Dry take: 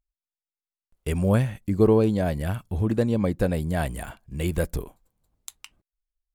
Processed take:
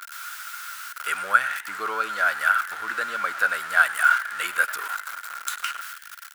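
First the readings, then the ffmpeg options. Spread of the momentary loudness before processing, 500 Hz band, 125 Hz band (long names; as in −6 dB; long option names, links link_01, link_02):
18 LU, −13.5 dB, below −35 dB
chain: -filter_complex "[0:a]aeval=exprs='val(0)+0.5*0.0211*sgn(val(0))':channel_layout=same,asplit=2[link_01][link_02];[link_02]alimiter=limit=-17dB:level=0:latency=1:release=12,volume=2.5dB[link_03];[link_01][link_03]amix=inputs=2:normalize=0,highpass=frequency=1400:width_type=q:width=15,asplit=6[link_04][link_05][link_06][link_07][link_08][link_09];[link_05]adelay=100,afreqshift=120,volume=-17.5dB[link_10];[link_06]adelay=200,afreqshift=240,volume=-22.2dB[link_11];[link_07]adelay=300,afreqshift=360,volume=-27dB[link_12];[link_08]adelay=400,afreqshift=480,volume=-31.7dB[link_13];[link_09]adelay=500,afreqshift=600,volume=-36.4dB[link_14];[link_04][link_10][link_11][link_12][link_13][link_14]amix=inputs=6:normalize=0,volume=-2.5dB"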